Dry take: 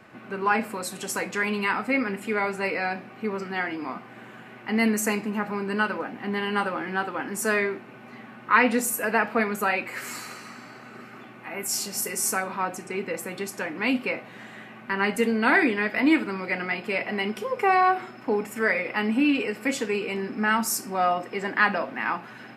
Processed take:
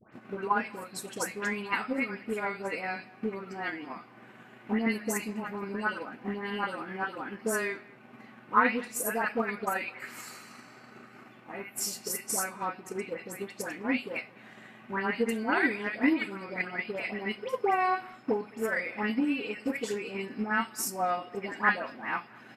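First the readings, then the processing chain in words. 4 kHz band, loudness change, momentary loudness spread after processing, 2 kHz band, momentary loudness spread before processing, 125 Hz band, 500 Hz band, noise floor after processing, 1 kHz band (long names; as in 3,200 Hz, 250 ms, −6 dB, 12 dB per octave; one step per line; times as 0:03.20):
−7.5 dB, −6.0 dB, 15 LU, −6.5 dB, 17 LU, −6.5 dB, −6.0 dB, −54 dBFS, −5.5 dB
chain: all-pass dispersion highs, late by 128 ms, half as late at 1,600 Hz
far-end echo of a speakerphone 210 ms, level −20 dB
transient designer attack +7 dB, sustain −2 dB
level −8 dB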